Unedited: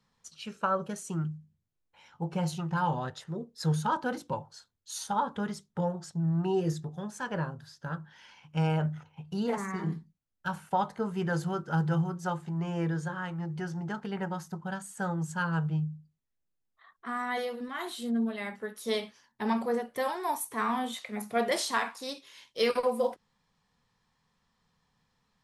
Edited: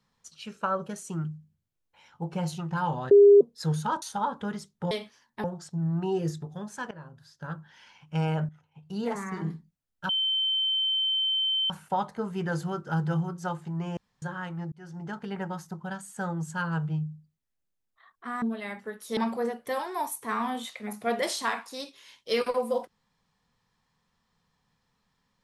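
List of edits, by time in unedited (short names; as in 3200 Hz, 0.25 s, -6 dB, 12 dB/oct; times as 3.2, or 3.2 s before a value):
3.11–3.41 bleep 405 Hz -11 dBFS
4.02–4.97 cut
7.33–7.97 fade in, from -19 dB
8.91–9.46 fade in quadratic, from -12.5 dB
10.51 add tone 3090 Hz -23.5 dBFS 1.61 s
12.78–13.03 room tone
13.53–14.11 fade in equal-power
17.23–18.18 cut
18.93–19.46 move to 5.86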